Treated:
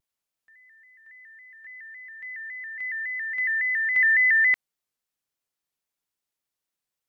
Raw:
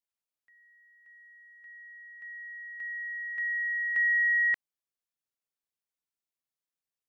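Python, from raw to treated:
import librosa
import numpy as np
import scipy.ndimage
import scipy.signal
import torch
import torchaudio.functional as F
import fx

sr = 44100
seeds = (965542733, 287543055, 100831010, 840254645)

y = fx.vibrato_shape(x, sr, shape='square', rate_hz=3.6, depth_cents=100.0)
y = F.gain(torch.from_numpy(y), 6.0).numpy()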